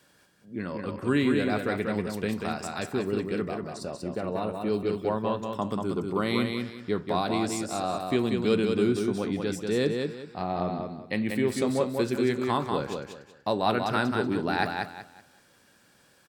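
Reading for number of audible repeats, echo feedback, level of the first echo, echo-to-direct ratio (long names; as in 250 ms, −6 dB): 3, 28%, −4.5 dB, −4.0 dB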